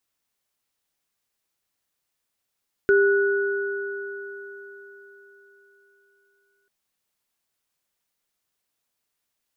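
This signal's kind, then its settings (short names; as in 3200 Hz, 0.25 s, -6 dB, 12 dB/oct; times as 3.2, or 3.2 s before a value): sine partials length 3.79 s, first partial 398 Hz, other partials 1470 Hz, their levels -5.5 dB, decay 3.86 s, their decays 4.51 s, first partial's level -14 dB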